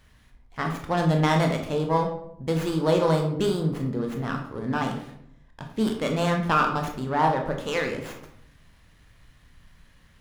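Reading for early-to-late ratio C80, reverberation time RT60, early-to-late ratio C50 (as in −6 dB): 9.5 dB, 0.70 s, 6.5 dB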